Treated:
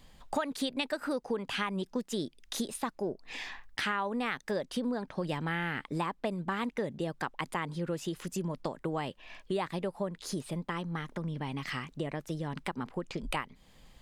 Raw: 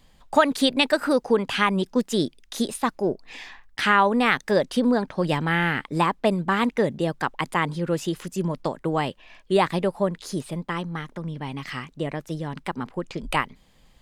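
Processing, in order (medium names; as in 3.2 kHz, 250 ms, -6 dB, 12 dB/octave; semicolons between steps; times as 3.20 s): compression 3:1, threshold -34 dBFS, peak gain reduction 16 dB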